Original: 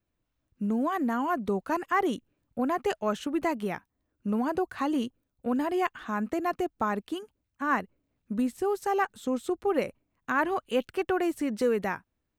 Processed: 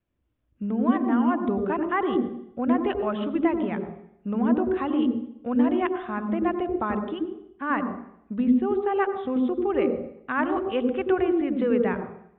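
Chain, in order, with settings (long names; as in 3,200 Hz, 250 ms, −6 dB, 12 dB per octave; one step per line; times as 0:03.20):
Butterworth low-pass 3,600 Hz 96 dB per octave
on a send: tilt shelving filter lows +9.5 dB, about 640 Hz + convolution reverb RT60 0.70 s, pre-delay 84 ms, DRR 6.5 dB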